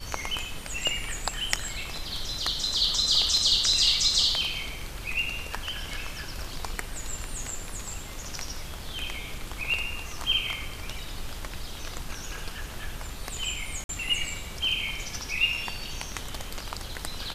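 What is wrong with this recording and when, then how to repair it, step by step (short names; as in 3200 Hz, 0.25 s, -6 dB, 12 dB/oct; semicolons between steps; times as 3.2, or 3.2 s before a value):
13.84–13.89 gap 52 ms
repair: interpolate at 13.84, 52 ms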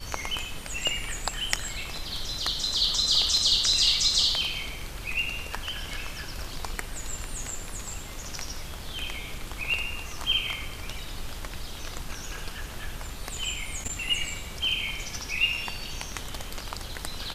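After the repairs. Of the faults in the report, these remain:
none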